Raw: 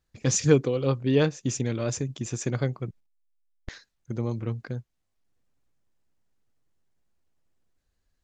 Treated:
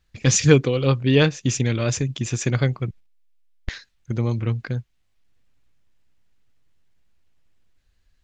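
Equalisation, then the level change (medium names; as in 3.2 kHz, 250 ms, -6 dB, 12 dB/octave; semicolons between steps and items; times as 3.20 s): bass shelf 140 Hz +10 dB; peaking EQ 2.7 kHz +9.5 dB 2.1 oct; +2.0 dB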